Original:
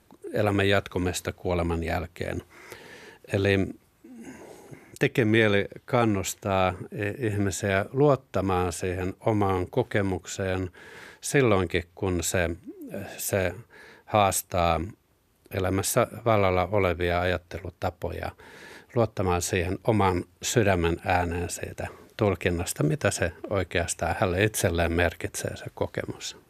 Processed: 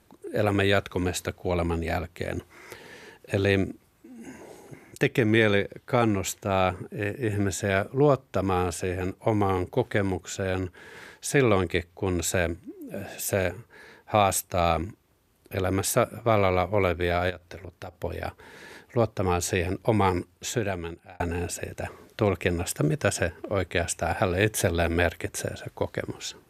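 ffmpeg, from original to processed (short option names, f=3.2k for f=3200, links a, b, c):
-filter_complex "[0:a]asplit=3[a][b][c];[a]afade=t=out:st=17.29:d=0.02[d];[b]acompressor=threshold=-35dB:ratio=5:attack=3.2:release=140:knee=1:detection=peak,afade=t=in:st=17.29:d=0.02,afade=t=out:st=17.99:d=0.02[e];[c]afade=t=in:st=17.99:d=0.02[f];[d][e][f]amix=inputs=3:normalize=0,asplit=2[g][h];[g]atrim=end=21.2,asetpts=PTS-STARTPTS,afade=t=out:st=20.08:d=1.12[i];[h]atrim=start=21.2,asetpts=PTS-STARTPTS,afade=t=in:d=0.004:c=hsin[j];[i][j]concat=n=2:v=0:a=1"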